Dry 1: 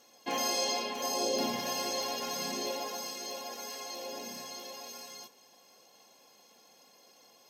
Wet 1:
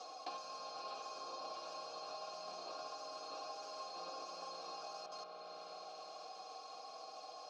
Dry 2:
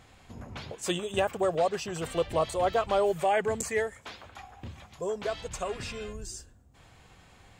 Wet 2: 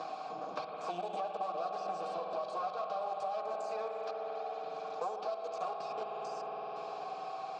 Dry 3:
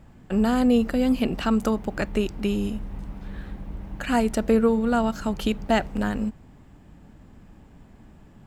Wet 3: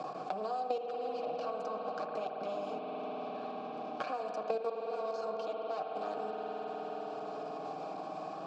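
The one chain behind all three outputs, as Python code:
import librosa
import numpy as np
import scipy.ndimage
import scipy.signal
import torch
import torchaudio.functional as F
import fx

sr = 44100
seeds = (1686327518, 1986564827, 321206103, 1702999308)

y = fx.lower_of_two(x, sr, delay_ms=6.4)
y = scipy.signal.sosfilt(scipy.signal.butter(4, 150.0, 'highpass', fs=sr, output='sos'), y)
y = fx.high_shelf_res(y, sr, hz=3600.0, db=9.0, q=3.0)
y = fx.level_steps(y, sr, step_db=19)
y = fx.vowel_filter(y, sr, vowel='a')
y = fx.air_absorb(y, sr, metres=84.0)
y = fx.rev_spring(y, sr, rt60_s=3.9, pass_ms=(51,), chirp_ms=45, drr_db=2.0)
y = fx.band_squash(y, sr, depth_pct=100)
y = y * 10.0 ** (10.5 / 20.0)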